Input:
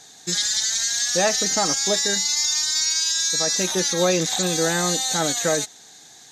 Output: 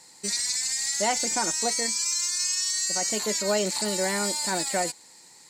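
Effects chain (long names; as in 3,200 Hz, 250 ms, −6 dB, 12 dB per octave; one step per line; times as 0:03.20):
speed change +15%
level −5 dB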